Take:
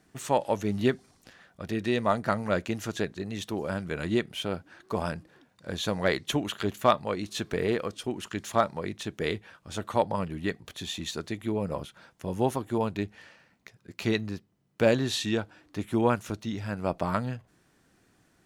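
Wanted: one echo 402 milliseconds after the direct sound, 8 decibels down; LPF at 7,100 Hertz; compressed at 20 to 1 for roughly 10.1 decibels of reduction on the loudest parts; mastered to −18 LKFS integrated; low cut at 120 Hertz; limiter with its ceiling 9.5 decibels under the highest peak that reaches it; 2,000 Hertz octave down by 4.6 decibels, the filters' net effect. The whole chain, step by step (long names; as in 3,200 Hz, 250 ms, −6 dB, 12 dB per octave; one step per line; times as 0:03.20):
high-pass filter 120 Hz
low-pass filter 7,100 Hz
parametric band 2,000 Hz −6 dB
downward compressor 20 to 1, threshold −27 dBFS
brickwall limiter −23.5 dBFS
single-tap delay 402 ms −8 dB
level +19 dB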